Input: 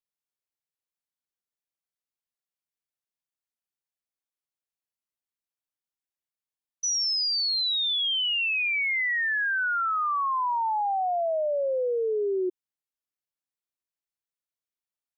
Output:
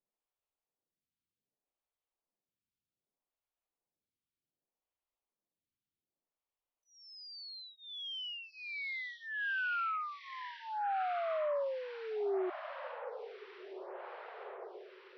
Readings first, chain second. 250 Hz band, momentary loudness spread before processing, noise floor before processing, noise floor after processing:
can't be measured, 4 LU, below −85 dBFS, below −85 dBFS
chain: parametric band 1,700 Hz −12 dB 1 octave
in parallel at +2.5 dB: compressor whose output falls as the input rises −34 dBFS
on the sum: brickwall limiter −29 dBFS, peak gain reduction 9.5 dB
high-frequency loss of the air 400 metres
on a send: feedback delay with all-pass diffusion 1,302 ms, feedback 67%, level −11 dB
on the sum: phaser with staggered stages 0.65 Hz

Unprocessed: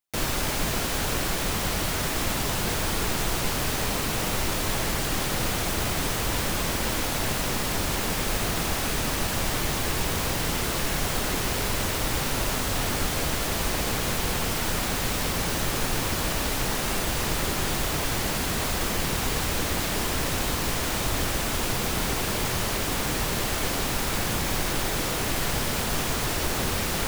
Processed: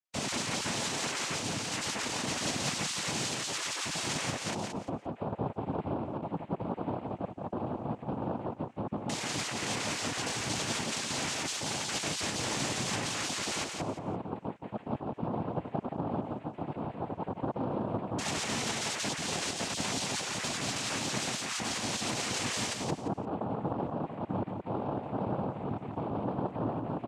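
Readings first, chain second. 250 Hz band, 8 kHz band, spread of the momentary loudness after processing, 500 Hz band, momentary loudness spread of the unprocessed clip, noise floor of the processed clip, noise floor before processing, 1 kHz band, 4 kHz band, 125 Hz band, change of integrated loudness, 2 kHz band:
−4.0 dB, −7.0 dB, 6 LU, −5.5 dB, 0 LU, −50 dBFS, −28 dBFS, −6.0 dB, −6.5 dB, −8.0 dB, −7.5 dB, −8.5 dB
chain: time-frequency cells dropped at random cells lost 45%
in parallel at −11 dB: bit reduction 7 bits
on the sum: auto-filter low-pass square 0.11 Hz 360–4,600 Hz
cochlear-implant simulation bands 4
on a send: repeating echo 173 ms, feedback 22%, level −5 dB
on the sum: highs frequency-modulated by the lows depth 0.18 ms
level −7 dB

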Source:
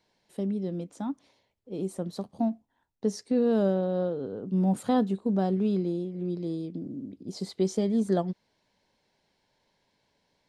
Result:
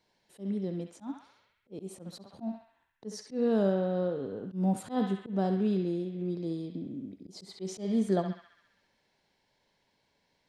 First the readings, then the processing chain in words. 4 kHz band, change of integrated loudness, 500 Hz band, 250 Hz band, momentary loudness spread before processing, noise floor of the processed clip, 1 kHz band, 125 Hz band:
−3.0 dB, −3.0 dB, −3.5 dB, −4.0 dB, 13 LU, −75 dBFS, −3.5 dB, −3.0 dB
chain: feedback echo with a band-pass in the loop 67 ms, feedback 77%, band-pass 2,100 Hz, level −4.5 dB
volume swells 139 ms
level −2 dB

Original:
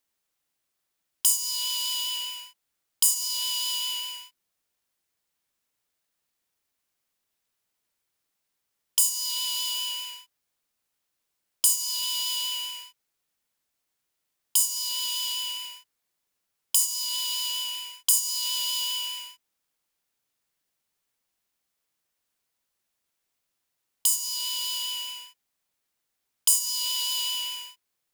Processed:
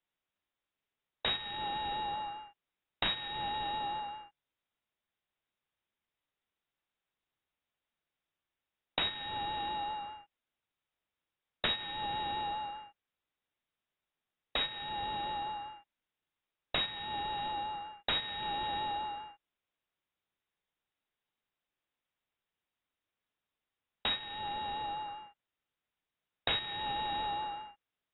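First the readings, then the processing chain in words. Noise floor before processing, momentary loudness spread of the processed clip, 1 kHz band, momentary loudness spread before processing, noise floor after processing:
−81 dBFS, 11 LU, +10.5 dB, 13 LU, below −85 dBFS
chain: stylus tracing distortion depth 0.15 ms
voice inversion scrambler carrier 3,800 Hz
level −4.5 dB

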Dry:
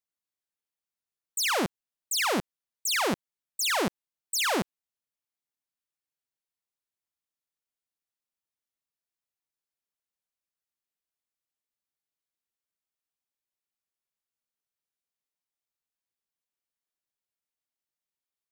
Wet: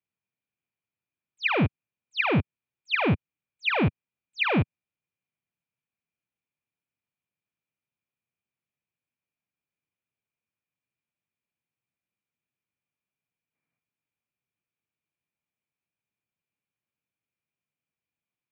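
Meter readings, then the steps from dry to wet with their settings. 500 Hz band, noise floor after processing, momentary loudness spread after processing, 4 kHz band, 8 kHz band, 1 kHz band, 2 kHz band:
+1.5 dB, below −85 dBFS, 9 LU, −4.5 dB, below −35 dB, −0.5 dB, +3.5 dB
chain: hollow resonant body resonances 220/2,500 Hz, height 14 dB, ringing for 20 ms
downward compressor 3 to 1, threshold −19 dBFS, peak gain reduction 4.5 dB
gain on a spectral selection 0:13.54–0:13.79, 210–2,500 Hz +7 dB
single-sideband voice off tune −100 Hz 190–3,400 Hz

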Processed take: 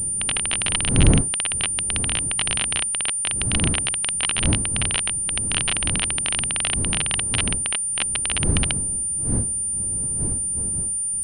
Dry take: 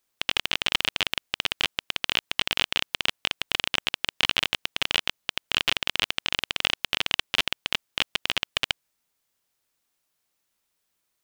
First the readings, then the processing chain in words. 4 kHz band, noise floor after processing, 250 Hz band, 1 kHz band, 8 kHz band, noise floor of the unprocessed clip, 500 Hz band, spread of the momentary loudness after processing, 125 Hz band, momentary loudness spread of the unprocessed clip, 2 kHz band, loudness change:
−1.5 dB, −25 dBFS, +16.0 dB, +0.5 dB, +22.5 dB, −77 dBFS, +5.5 dB, 3 LU, +22.0 dB, 5 LU, −0.5 dB, +5.5 dB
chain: wind on the microphone 160 Hz −27 dBFS
switching amplifier with a slow clock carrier 9,200 Hz

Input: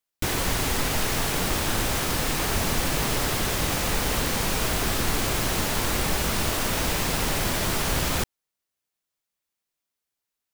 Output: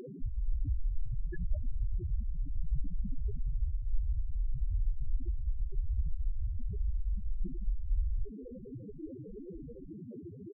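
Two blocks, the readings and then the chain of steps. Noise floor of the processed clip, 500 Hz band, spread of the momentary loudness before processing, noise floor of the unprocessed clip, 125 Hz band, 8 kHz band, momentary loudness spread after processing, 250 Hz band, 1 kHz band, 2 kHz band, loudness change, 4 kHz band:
−47 dBFS, −20.5 dB, 0 LU, −85 dBFS, −7.5 dB, below −40 dB, 9 LU, −16.0 dB, below −40 dB, below −35 dB, −14.5 dB, below −40 dB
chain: sub-octave generator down 2 octaves, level 0 dB
high-shelf EQ 2,700 Hz +7.5 dB
sound drawn into the spectrogram fall, 0:01.06–0:01.64, 400–6,800 Hz −34 dBFS
noise in a band 79–520 Hz −36 dBFS
slap from a distant wall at 280 metres, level −16 dB
spectral peaks only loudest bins 2
level −1 dB

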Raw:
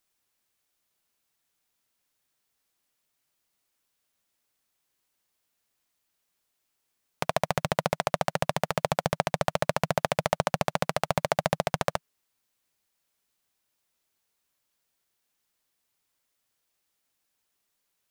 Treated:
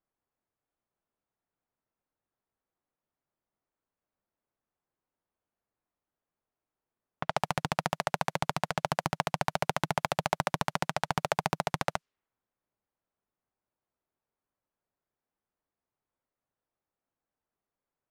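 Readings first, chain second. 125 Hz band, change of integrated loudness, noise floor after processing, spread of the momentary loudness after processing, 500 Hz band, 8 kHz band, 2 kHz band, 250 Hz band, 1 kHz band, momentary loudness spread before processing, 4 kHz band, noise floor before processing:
−3.5 dB, −3.5 dB, below −85 dBFS, 3 LU, −7.0 dB, −3.0 dB, −1.5 dB, −3.0 dB, −1.5 dB, 2 LU, −2.5 dB, −79 dBFS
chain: low-pass that shuts in the quiet parts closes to 1,100 Hz, open at −24.5 dBFS
highs frequency-modulated by the lows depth 0.65 ms
level −2.5 dB

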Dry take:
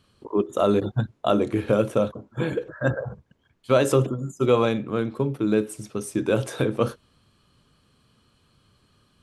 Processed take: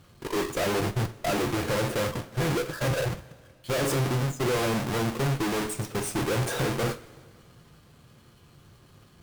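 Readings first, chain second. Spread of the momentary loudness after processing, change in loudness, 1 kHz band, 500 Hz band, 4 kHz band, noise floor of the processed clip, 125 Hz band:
5 LU, −3.5 dB, −1.5 dB, −6.0 dB, +4.0 dB, −56 dBFS, −0.5 dB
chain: each half-wave held at its own peak
tube saturation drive 29 dB, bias 0.5
coupled-rooms reverb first 0.26 s, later 2.1 s, from −19 dB, DRR 6.5 dB
level +3.5 dB

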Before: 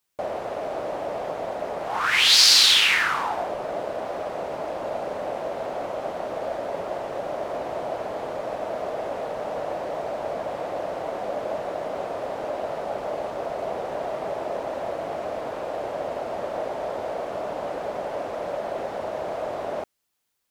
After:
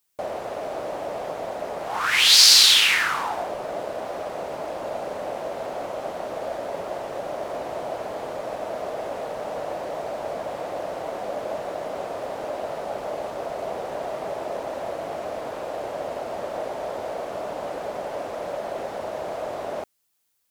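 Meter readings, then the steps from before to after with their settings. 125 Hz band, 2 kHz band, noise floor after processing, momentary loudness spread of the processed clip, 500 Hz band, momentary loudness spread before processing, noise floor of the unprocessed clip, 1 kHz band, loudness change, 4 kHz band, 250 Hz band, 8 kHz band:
−1.0 dB, 0.0 dB, −34 dBFS, 11 LU, −1.0 dB, 10 LU, −34 dBFS, −1.0 dB, +1.0 dB, +1.5 dB, −1.0 dB, +3.5 dB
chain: high-shelf EQ 5,400 Hz +7.5 dB
level −1 dB

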